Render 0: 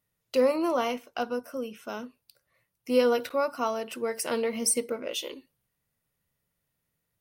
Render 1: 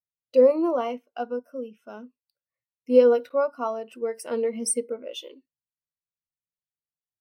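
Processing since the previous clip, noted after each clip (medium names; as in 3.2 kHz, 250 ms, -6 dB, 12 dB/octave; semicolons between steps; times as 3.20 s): spectral contrast expander 1.5:1; trim +6.5 dB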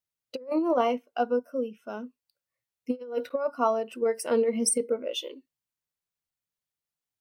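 compressor with a negative ratio -25 dBFS, ratio -0.5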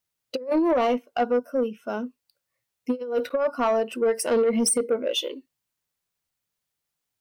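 in parallel at +3 dB: peak limiter -21.5 dBFS, peak gain reduction 10 dB; on the sum: saturation -15.5 dBFS, distortion -16 dB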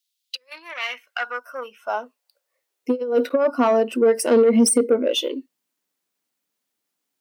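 high-pass sweep 3.6 kHz -> 260 Hz, 0.25–3.20 s; trim +3 dB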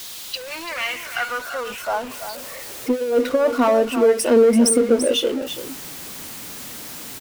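jump at every zero crossing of -28.5 dBFS; delay 337 ms -10 dB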